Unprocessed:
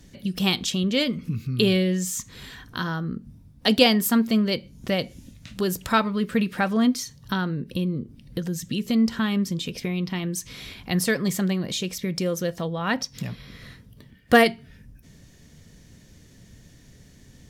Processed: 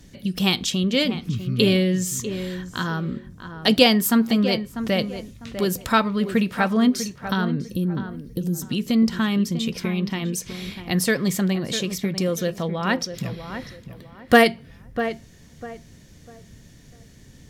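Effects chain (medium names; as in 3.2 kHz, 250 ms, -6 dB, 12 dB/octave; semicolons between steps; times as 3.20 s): 7.62–8.63 s: FFT filter 330 Hz 0 dB, 1.7 kHz -16 dB, 14 kHz +6 dB; tape echo 648 ms, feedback 31%, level -9 dB, low-pass 1.6 kHz; trim +2 dB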